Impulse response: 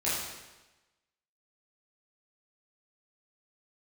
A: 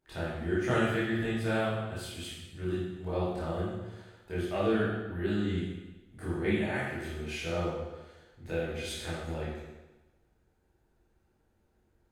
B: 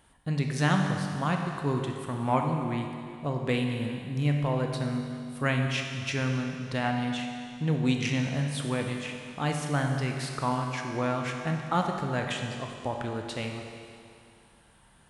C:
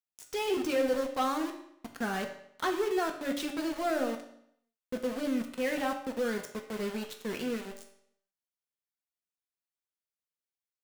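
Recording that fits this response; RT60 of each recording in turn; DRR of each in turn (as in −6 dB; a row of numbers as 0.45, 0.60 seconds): A; 1.1, 2.4, 0.70 seconds; −10.5, 2.5, 3.5 decibels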